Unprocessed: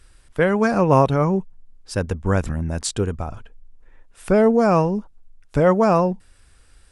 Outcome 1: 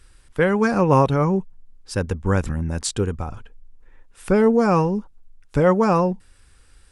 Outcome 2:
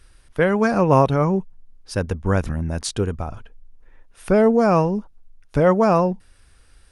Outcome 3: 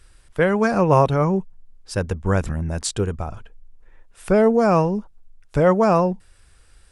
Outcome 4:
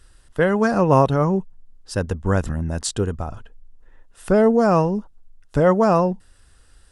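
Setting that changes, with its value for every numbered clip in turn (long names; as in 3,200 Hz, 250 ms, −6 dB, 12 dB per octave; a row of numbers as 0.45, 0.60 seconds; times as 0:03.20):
notch filter, centre frequency: 650, 7,600, 260, 2,300 Hertz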